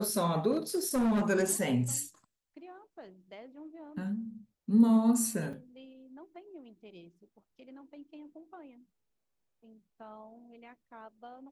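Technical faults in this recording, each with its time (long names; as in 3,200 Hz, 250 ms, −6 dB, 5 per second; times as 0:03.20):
0:00.51–0:01.30: clipping −24.5 dBFS
0:05.53: drop-out 4.3 ms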